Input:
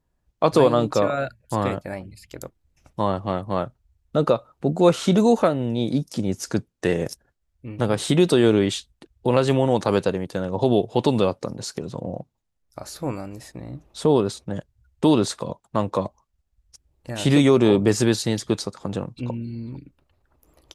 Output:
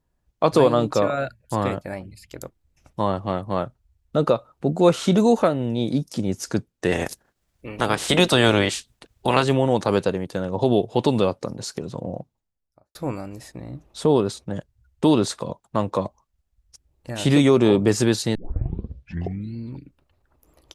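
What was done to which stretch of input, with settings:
0:06.91–0:09.42: ceiling on every frequency bin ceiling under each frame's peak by 17 dB
0:12.18–0:12.95: fade out and dull
0:18.35: tape start 1.20 s

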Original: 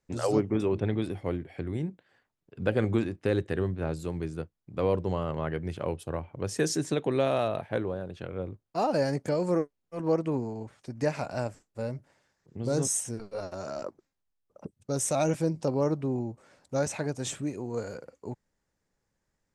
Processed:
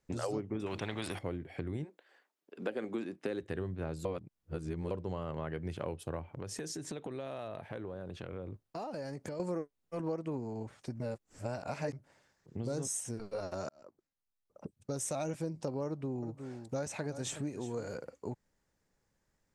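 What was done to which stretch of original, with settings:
0:00.66–0:01.19: every bin compressed towards the loudest bin 2 to 1
0:01.83–0:03.41: high-pass filter 400 Hz → 150 Hz 24 dB per octave
0:04.05–0:04.91: reverse
0:06.23–0:09.40: downward compressor 5 to 1, threshold −39 dBFS
0:11.00–0:11.93: reverse
0:13.69–0:15.24: fade in
0:15.86–0:17.91: single-tap delay 364 ms −15 dB
whole clip: downward compressor 4 to 1, threshold −36 dBFS; level +1 dB

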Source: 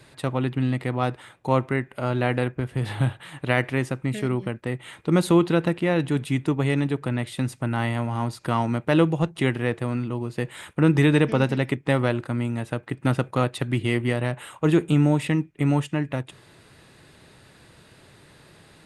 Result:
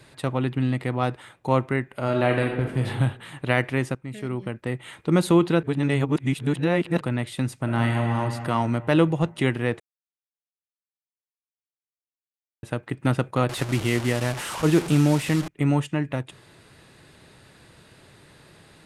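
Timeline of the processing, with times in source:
0:02.03–0:02.85: thrown reverb, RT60 0.98 s, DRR 2 dB
0:03.95–0:04.69: fade in, from −13.5 dB
0:05.63–0:07.01: reverse
0:07.60–0:08.16: thrown reverb, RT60 2.9 s, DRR 2 dB
0:09.80–0:12.63: silence
0:13.49–0:15.48: linear delta modulator 64 kbit/s, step −26 dBFS

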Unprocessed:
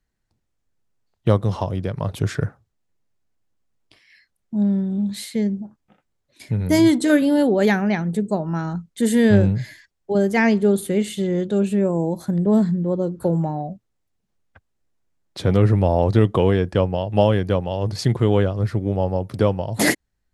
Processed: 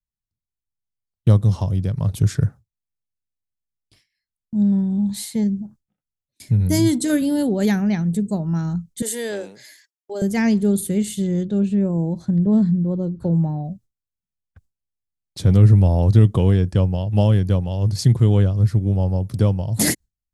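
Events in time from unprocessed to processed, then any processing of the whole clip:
0:04.72–0:05.44: parametric band 890 Hz +13.5 dB 0.66 octaves
0:09.02–0:10.22: high-pass filter 400 Hz 24 dB per octave
0:11.43–0:13.65: high-frequency loss of the air 140 metres
whole clip: noise gate with hold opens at −38 dBFS; bass and treble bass +14 dB, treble +13 dB; level −7.5 dB

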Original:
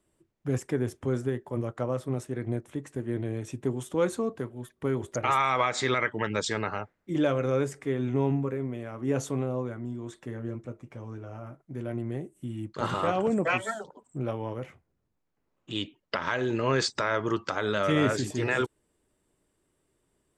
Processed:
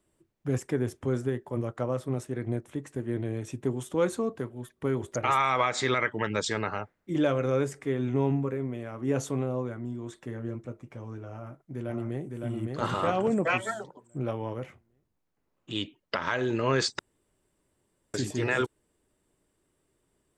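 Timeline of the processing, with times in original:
0:11.33–0:12.23: delay throw 560 ms, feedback 35%, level −2.5 dB
0:16.99–0:18.14: fill with room tone

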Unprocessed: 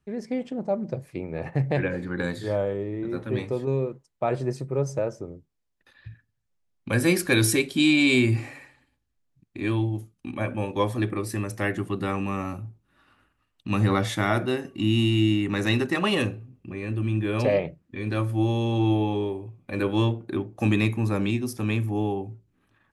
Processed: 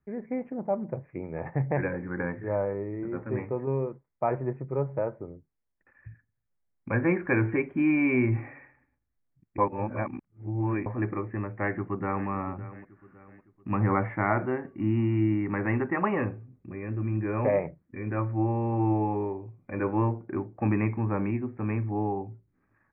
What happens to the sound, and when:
0:09.58–0:10.86: reverse
0:11.52–0:12.28: delay throw 560 ms, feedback 45%, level −15 dB
whole clip: dynamic equaliser 930 Hz, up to +7 dB, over −46 dBFS, Q 2.4; Butterworth low-pass 2,300 Hz 72 dB per octave; level −3.5 dB

